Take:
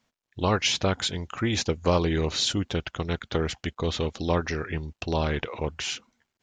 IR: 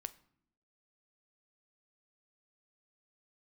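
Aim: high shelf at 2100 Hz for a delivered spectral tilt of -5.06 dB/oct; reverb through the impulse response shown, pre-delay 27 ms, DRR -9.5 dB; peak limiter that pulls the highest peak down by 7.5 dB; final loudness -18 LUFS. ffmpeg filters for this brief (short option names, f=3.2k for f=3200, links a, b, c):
-filter_complex "[0:a]highshelf=f=2.1k:g=-5,alimiter=limit=-17.5dB:level=0:latency=1,asplit=2[a][b];[1:a]atrim=start_sample=2205,adelay=27[c];[b][c]afir=irnorm=-1:irlink=0,volume=13dB[d];[a][d]amix=inputs=2:normalize=0,volume=2dB"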